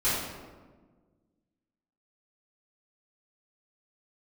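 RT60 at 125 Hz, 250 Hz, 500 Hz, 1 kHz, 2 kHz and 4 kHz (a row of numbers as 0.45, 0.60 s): 2.0, 2.0, 1.6, 1.3, 1.0, 0.75 s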